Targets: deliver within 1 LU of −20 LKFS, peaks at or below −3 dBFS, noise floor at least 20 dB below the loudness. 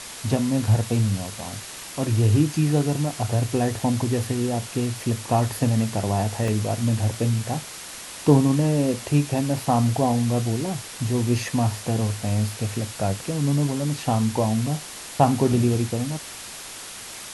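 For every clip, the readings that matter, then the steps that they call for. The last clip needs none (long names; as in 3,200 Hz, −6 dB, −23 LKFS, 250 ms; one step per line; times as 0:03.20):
number of dropouts 2; longest dropout 1.8 ms; background noise floor −38 dBFS; target noise floor −44 dBFS; integrated loudness −23.5 LKFS; sample peak −3.5 dBFS; target loudness −20.0 LKFS
→ repair the gap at 0:03.79/0:06.48, 1.8 ms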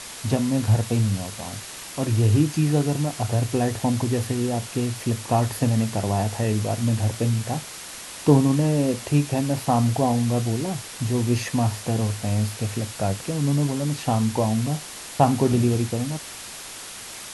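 number of dropouts 0; background noise floor −38 dBFS; target noise floor −44 dBFS
→ broadband denoise 6 dB, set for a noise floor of −38 dBFS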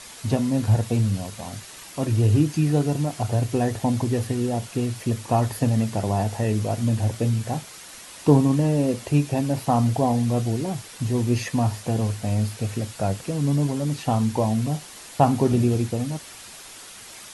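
background noise floor −42 dBFS; target noise floor −44 dBFS
→ broadband denoise 6 dB, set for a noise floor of −42 dBFS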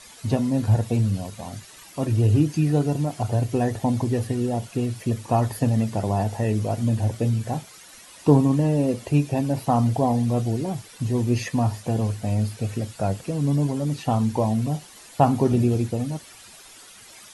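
background noise floor −47 dBFS; integrated loudness −23.5 LKFS; sample peak −4.0 dBFS; target loudness −20.0 LKFS
→ level +3.5 dB
brickwall limiter −3 dBFS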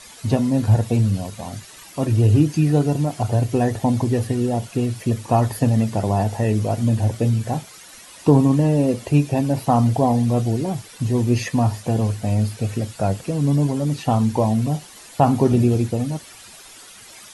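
integrated loudness −20.0 LKFS; sample peak −3.0 dBFS; background noise floor −43 dBFS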